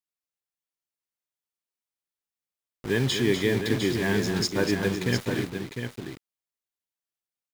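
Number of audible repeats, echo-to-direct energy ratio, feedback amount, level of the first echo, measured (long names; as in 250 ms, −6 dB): 2, −4.5 dB, repeats not evenly spaced, −8.0 dB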